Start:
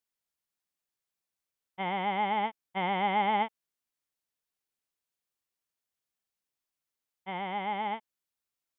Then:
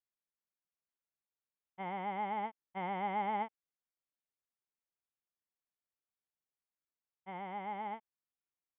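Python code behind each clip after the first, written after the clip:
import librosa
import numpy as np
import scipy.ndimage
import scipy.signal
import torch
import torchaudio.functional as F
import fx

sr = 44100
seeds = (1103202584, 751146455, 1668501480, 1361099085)

y = scipy.signal.sosfilt(scipy.signal.butter(2, 2000.0, 'lowpass', fs=sr, output='sos'), x)
y = F.gain(torch.from_numpy(y), -7.5).numpy()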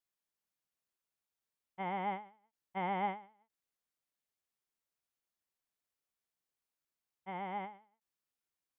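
y = fx.end_taper(x, sr, db_per_s=140.0)
y = F.gain(torch.from_numpy(y), 2.5).numpy()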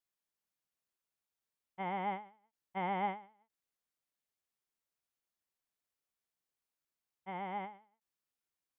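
y = x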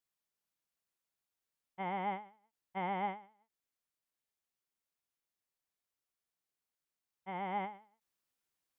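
y = fx.rider(x, sr, range_db=10, speed_s=0.5)
y = F.gain(torch.from_numpy(y), 2.5).numpy()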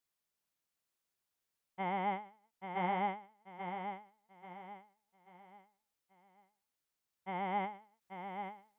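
y = fx.echo_feedback(x, sr, ms=836, feedback_pct=36, wet_db=-7)
y = F.gain(torch.from_numpy(y), 1.5).numpy()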